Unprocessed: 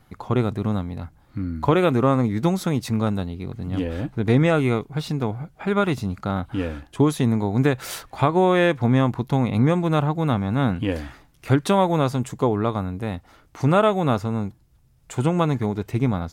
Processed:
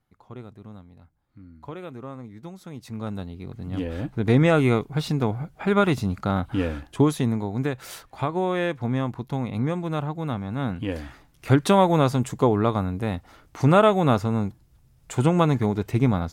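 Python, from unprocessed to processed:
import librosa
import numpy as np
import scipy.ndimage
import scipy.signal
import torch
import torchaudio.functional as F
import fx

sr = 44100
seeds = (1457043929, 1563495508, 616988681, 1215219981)

y = fx.gain(x, sr, db=fx.line((2.58, -19.0), (3.16, -7.0), (4.64, 1.0), (6.86, 1.0), (7.61, -7.0), (10.55, -7.0), (11.62, 1.0)))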